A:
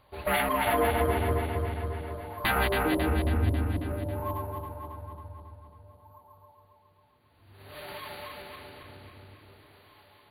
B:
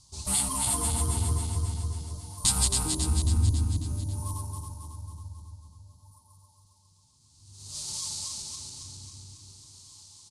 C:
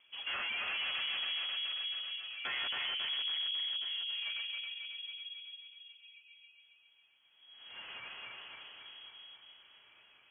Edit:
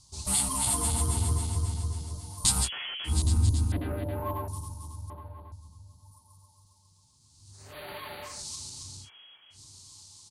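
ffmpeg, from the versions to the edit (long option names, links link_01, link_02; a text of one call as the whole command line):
ffmpeg -i take0.wav -i take1.wav -i take2.wav -filter_complex "[2:a]asplit=2[link_01][link_02];[0:a]asplit=3[link_03][link_04][link_05];[1:a]asplit=6[link_06][link_07][link_08][link_09][link_10][link_11];[link_06]atrim=end=2.7[link_12];[link_01]atrim=start=2.6:end=3.14[link_13];[link_07]atrim=start=3.04:end=3.722[link_14];[link_03]atrim=start=3.718:end=4.482[link_15];[link_08]atrim=start=4.478:end=5.102[link_16];[link_04]atrim=start=5.098:end=5.522[link_17];[link_09]atrim=start=5.518:end=7.74[link_18];[link_05]atrim=start=7.5:end=8.46[link_19];[link_10]atrim=start=8.22:end=9.1[link_20];[link_02]atrim=start=9:end=9.6[link_21];[link_11]atrim=start=9.5[link_22];[link_12][link_13]acrossfade=duration=0.1:curve1=tri:curve2=tri[link_23];[link_23][link_14]acrossfade=duration=0.1:curve1=tri:curve2=tri[link_24];[link_24][link_15]acrossfade=duration=0.004:curve1=hsin:curve2=hsin[link_25];[link_25][link_16]acrossfade=duration=0.004:curve1=hsin:curve2=hsin[link_26];[link_26][link_17]acrossfade=duration=0.004:curve1=hsin:curve2=hsin[link_27];[link_27][link_18]acrossfade=duration=0.004:curve1=hsin:curve2=hsin[link_28];[link_28][link_19]acrossfade=duration=0.24:curve1=tri:curve2=tri[link_29];[link_29][link_20]acrossfade=duration=0.24:curve1=tri:curve2=tri[link_30];[link_30][link_21]acrossfade=duration=0.1:curve1=tri:curve2=tri[link_31];[link_31][link_22]acrossfade=duration=0.1:curve1=tri:curve2=tri" out.wav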